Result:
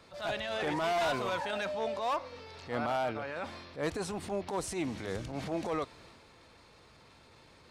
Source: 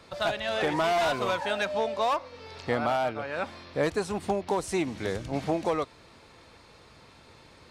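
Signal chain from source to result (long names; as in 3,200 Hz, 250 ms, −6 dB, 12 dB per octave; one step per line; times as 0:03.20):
transient designer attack −10 dB, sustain +4 dB
level −4.5 dB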